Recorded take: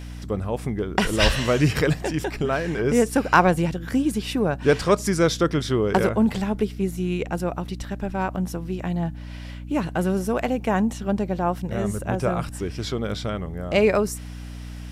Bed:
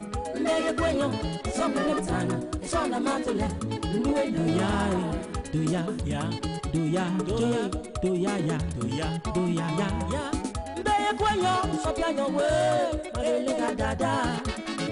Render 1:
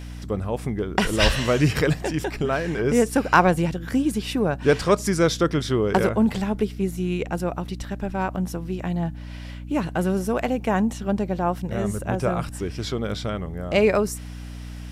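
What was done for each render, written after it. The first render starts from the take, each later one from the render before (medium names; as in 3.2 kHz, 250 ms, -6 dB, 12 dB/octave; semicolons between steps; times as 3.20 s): no audible change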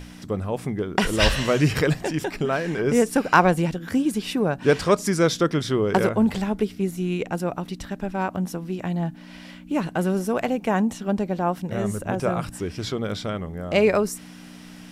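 hum notches 60/120 Hz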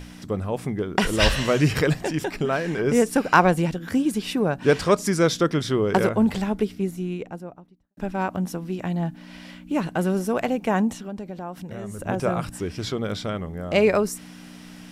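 6.54–7.97 s: studio fade out; 10.93–11.99 s: compression 2.5:1, threshold -34 dBFS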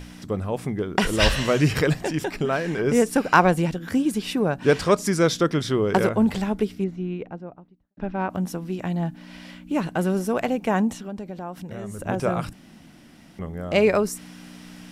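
6.84–8.30 s: distance through air 230 m; 12.53–13.39 s: room tone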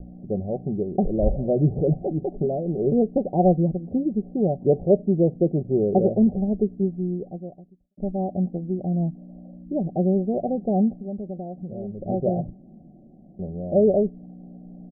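steep low-pass 750 Hz 96 dB/octave; comb 5.3 ms, depth 36%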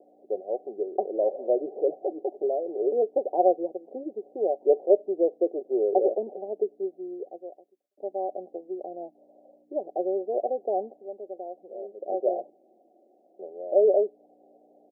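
steep high-pass 380 Hz 36 dB/octave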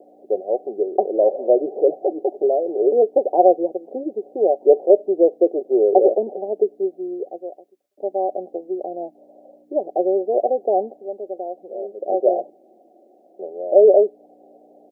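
trim +8.5 dB; peak limiter -2 dBFS, peak gain reduction 2.5 dB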